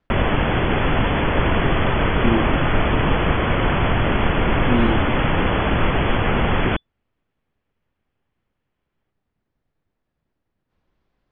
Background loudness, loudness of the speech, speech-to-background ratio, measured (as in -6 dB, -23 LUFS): -20.0 LUFS, -25.0 LUFS, -5.0 dB